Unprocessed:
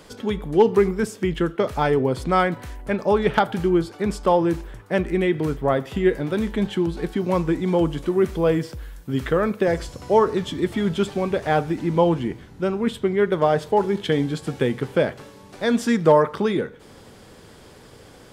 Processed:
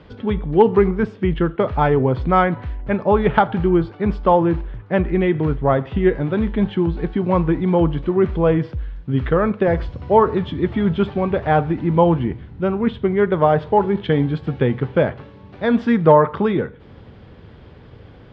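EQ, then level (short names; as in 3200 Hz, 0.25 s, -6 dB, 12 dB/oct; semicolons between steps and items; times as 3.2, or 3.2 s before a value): dynamic EQ 960 Hz, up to +6 dB, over -33 dBFS, Q 0.8; LPF 3500 Hz 24 dB/oct; bell 77 Hz +12 dB 2.6 oct; -1.5 dB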